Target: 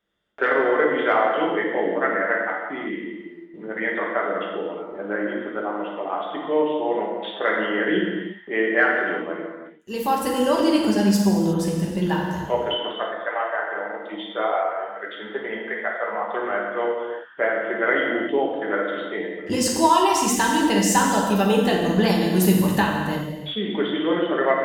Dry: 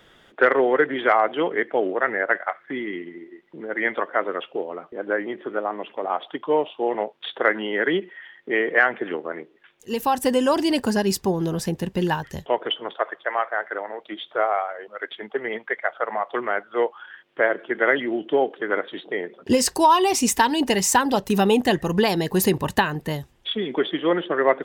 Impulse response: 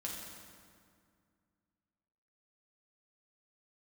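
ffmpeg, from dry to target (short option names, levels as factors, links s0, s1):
-filter_complex "[0:a]agate=range=0.0794:threshold=0.00355:ratio=16:detection=peak[s0];[1:a]atrim=start_sample=2205,afade=t=out:st=0.43:d=0.01,atrim=end_sample=19404[s1];[s0][s1]afir=irnorm=-1:irlink=0"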